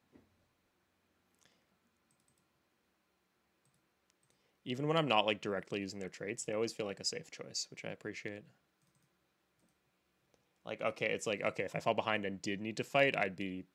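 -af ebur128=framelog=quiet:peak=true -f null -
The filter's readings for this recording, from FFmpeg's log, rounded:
Integrated loudness:
  I:         -36.4 LUFS
  Threshold: -46.9 LUFS
Loudness range:
  LRA:        11.6 LU
  Threshold: -59.1 LUFS
  LRA low:   -47.2 LUFS
  LRA high:  -35.6 LUFS
True peak:
  Peak:      -12.8 dBFS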